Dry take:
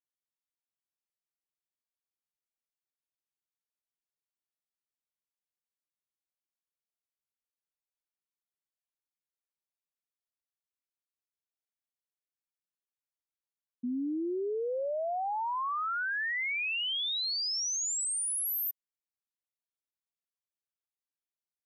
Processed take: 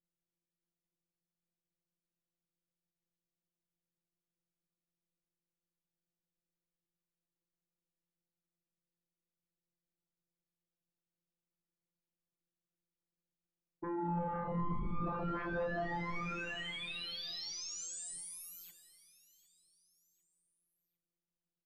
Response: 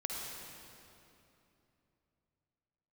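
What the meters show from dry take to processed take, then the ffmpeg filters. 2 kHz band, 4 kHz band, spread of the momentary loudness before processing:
-10.0 dB, -11.0 dB, 5 LU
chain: -filter_complex "[0:a]aeval=exprs='val(0)*sin(2*PI*550*n/s)':c=same,asplit=2[a][b];[1:a]atrim=start_sample=2205[c];[b][c]afir=irnorm=-1:irlink=0,volume=-13.5dB[d];[a][d]amix=inputs=2:normalize=0,asoftclip=type=tanh:threshold=-30.5dB,equalizer=f=240:w=5.6:g=-2.5,afftfilt=real='hypot(re,im)*cos(PI*b)':imag='0':win_size=1024:overlap=0.75,lowpass=8.8k,acrossover=split=420|6300[e][f][g];[e]aeval=exprs='0.0158*sin(PI/2*5.62*val(0)/0.0158)':c=same[h];[h][f][g]amix=inputs=3:normalize=0,lowshelf=f=450:g=7.5,bandreject=f=50:t=h:w=6,bandreject=f=100:t=h:w=6,bandreject=f=150:t=h:w=6,bandreject=f=200:t=h:w=6,bandreject=f=250:t=h:w=6,bandreject=f=300:t=h:w=6,bandreject=f=350:t=h:w=6,bandreject=f=400:t=h:w=6,aecho=1:1:753|1506|2259:0.106|0.0434|0.0178,flanger=delay=3.4:depth=3.1:regen=-80:speed=1.4:shape=sinusoidal,volume=1dB"

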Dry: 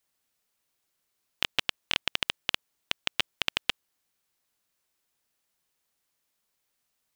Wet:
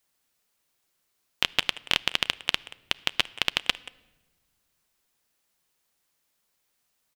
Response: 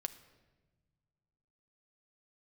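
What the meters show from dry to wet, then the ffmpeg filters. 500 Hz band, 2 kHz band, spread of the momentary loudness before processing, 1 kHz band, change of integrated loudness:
+3.5 dB, +3.5 dB, 4 LU, +3.5 dB, +3.5 dB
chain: -filter_complex "[0:a]asplit=2[a][b];[b]adelay=180,highpass=300,lowpass=3.4k,asoftclip=type=hard:threshold=-13.5dB,volume=-15dB[c];[a][c]amix=inputs=2:normalize=0,asplit=2[d][e];[1:a]atrim=start_sample=2205[f];[e][f]afir=irnorm=-1:irlink=0,volume=-4.5dB[g];[d][g]amix=inputs=2:normalize=0"

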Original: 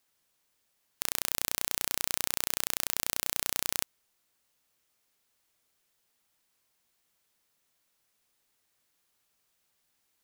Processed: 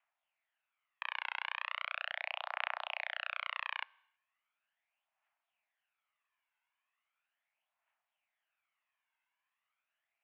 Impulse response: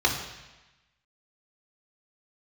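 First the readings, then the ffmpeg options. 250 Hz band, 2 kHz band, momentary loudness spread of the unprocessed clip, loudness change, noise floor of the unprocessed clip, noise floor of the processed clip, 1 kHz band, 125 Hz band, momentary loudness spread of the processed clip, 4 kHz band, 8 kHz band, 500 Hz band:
under -40 dB, +2.0 dB, 3 LU, -9.0 dB, -76 dBFS, under -85 dBFS, +1.5 dB, under -40 dB, 3 LU, -8.0 dB, under -40 dB, -6.5 dB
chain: -filter_complex "[0:a]aphaser=in_gain=1:out_gain=1:delay=1.8:decay=0.55:speed=0.38:type=triangular,aeval=exprs='0.891*(cos(1*acos(clip(val(0)/0.891,-1,1)))-cos(1*PI/2))+0.0794*(cos(6*acos(clip(val(0)/0.891,-1,1)))-cos(6*PI/2))+0.2*(cos(7*acos(clip(val(0)/0.891,-1,1)))-cos(7*PI/2))':c=same,asplit=2[a][b];[1:a]atrim=start_sample=2205,afade=t=out:st=0.38:d=0.01,atrim=end_sample=17199[c];[b][c]afir=irnorm=-1:irlink=0,volume=-33.5dB[d];[a][d]amix=inputs=2:normalize=0,highpass=f=280:t=q:w=0.5412,highpass=f=280:t=q:w=1.307,lowpass=f=2.5k:t=q:w=0.5176,lowpass=f=2.5k:t=q:w=0.7071,lowpass=f=2.5k:t=q:w=1.932,afreqshift=370"

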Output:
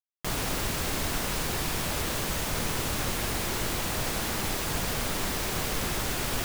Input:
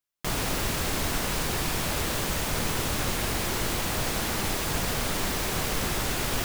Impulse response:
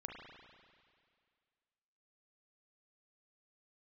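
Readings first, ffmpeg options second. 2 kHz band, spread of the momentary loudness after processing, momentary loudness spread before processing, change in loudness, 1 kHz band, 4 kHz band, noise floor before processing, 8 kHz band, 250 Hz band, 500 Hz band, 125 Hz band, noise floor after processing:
-2.0 dB, 0 LU, 0 LU, -1.5 dB, -2.0 dB, -1.5 dB, -30 dBFS, -1.5 dB, -2.0 dB, -2.0 dB, -2.0 dB, -31 dBFS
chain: -af "acrusher=bits=5:mix=0:aa=0.000001,volume=-2dB"

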